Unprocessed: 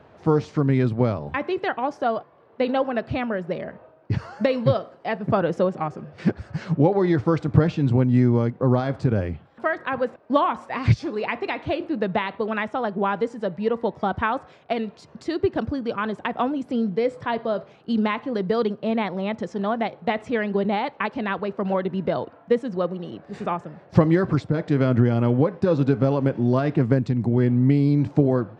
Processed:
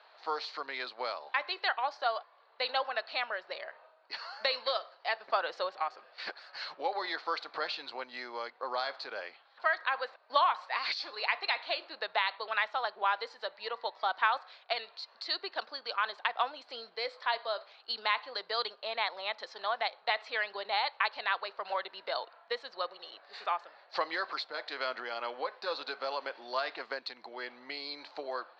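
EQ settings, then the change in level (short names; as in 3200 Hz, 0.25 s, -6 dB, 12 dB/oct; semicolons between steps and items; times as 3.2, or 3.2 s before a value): Bessel high-pass 1100 Hz, order 4; synth low-pass 4300 Hz, resonance Q 8.8; high shelf 2700 Hz -8.5 dB; 0.0 dB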